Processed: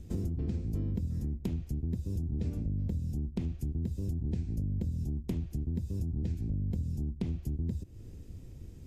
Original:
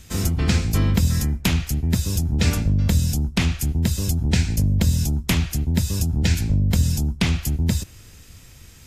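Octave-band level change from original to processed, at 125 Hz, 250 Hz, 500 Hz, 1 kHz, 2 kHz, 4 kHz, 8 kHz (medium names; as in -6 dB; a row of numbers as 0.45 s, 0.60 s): -13.0 dB, -12.5 dB, -12.5 dB, under -20 dB, under -30 dB, under -30 dB, under -30 dB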